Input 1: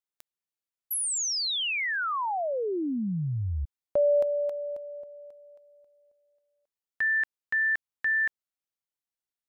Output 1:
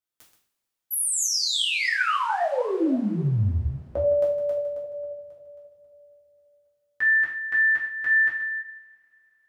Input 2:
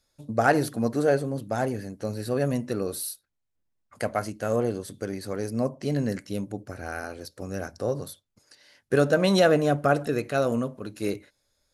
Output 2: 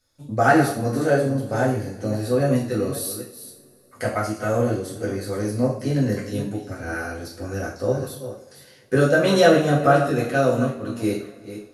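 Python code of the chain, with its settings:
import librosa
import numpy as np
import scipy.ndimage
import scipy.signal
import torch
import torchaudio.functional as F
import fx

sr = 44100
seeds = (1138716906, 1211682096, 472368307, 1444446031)

y = fx.reverse_delay(x, sr, ms=269, wet_db=-11.0)
y = fx.rev_double_slope(y, sr, seeds[0], early_s=0.46, late_s=3.6, knee_db=-27, drr_db=-5.0)
y = F.gain(torch.from_numpy(y), -2.0).numpy()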